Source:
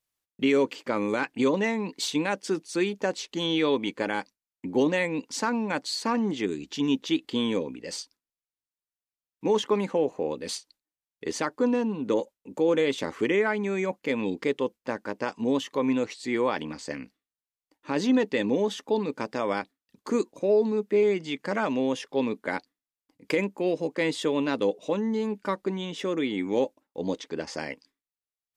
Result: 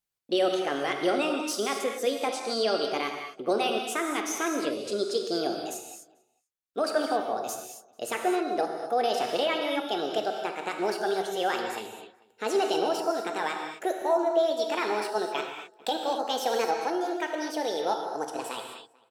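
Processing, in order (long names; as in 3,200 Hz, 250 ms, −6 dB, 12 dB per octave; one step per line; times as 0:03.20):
gliding playback speed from 134% → 165%
slap from a distant wall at 76 metres, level −25 dB
reverb whose tail is shaped and stops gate 280 ms flat, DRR 2 dB
level −3 dB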